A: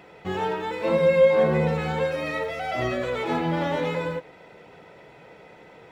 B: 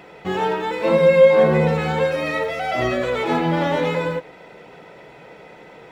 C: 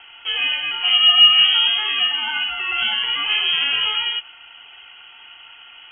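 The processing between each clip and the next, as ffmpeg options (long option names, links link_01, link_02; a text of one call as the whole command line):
ffmpeg -i in.wav -af "equalizer=frequency=93:width_type=o:width=0.43:gain=-9.5,volume=5.5dB" out.wav
ffmpeg -i in.wav -filter_complex "[0:a]lowpass=frequency=2900:width_type=q:width=0.5098,lowpass=frequency=2900:width_type=q:width=0.6013,lowpass=frequency=2900:width_type=q:width=0.9,lowpass=frequency=2900:width_type=q:width=2.563,afreqshift=-3400,acrossover=split=140[link_01][link_02];[link_01]acrusher=bits=2:mode=log:mix=0:aa=0.000001[link_03];[link_03][link_02]amix=inputs=2:normalize=0" out.wav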